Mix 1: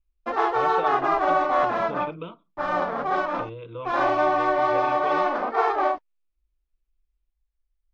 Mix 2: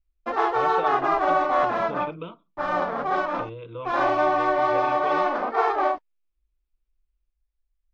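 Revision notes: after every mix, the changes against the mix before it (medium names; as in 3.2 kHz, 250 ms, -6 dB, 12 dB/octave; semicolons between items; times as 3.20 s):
no change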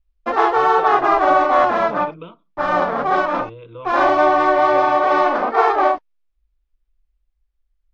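background +7.0 dB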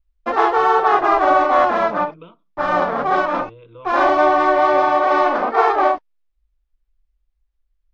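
speech -5.0 dB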